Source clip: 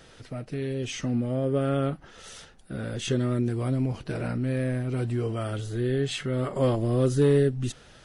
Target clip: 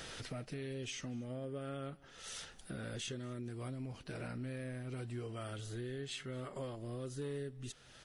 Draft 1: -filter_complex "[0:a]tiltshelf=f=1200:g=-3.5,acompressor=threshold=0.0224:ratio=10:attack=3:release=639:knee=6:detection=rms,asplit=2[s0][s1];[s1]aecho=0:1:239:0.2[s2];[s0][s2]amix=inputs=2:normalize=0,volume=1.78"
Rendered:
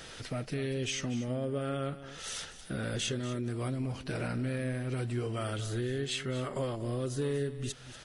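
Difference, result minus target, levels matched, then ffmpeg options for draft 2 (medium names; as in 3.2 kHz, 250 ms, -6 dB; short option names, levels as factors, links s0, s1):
compression: peak gain reduction -9 dB; echo-to-direct +10.5 dB
-filter_complex "[0:a]tiltshelf=f=1200:g=-3.5,acompressor=threshold=0.00708:ratio=10:attack=3:release=639:knee=6:detection=rms,asplit=2[s0][s1];[s1]aecho=0:1:239:0.0596[s2];[s0][s2]amix=inputs=2:normalize=0,volume=1.78"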